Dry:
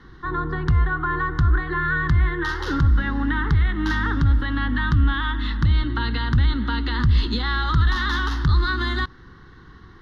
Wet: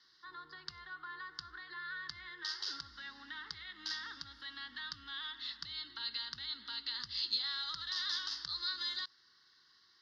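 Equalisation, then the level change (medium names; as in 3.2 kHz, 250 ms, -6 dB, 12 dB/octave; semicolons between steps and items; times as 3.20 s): band-pass filter 4.9 kHz, Q 7.2; +6.5 dB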